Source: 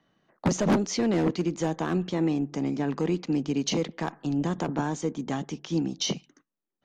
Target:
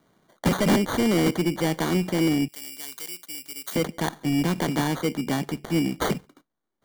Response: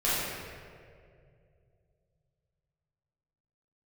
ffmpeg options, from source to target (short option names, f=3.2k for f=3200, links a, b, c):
-filter_complex "[0:a]acrusher=samples=17:mix=1:aa=0.000001,asettb=1/sr,asplit=3[a][b][c];[a]atrim=end=2.484[d];[b]atrim=start=2.48:end=3.76,asetpts=PTS-STARTPTS,afade=t=in:d=0.004:c=qsin,afade=t=out:st=1.276:d=0.004:c=qsin,aderivative[e];[c]atrim=start=3.756[f];[d][e]acrossfade=d=0.004:c1=hsin:c2=qsin[g];[g][f]acrossfade=d=0.004:c1=qsin:c2=hsin,asoftclip=type=tanh:threshold=-20.5dB,volume=5.5dB"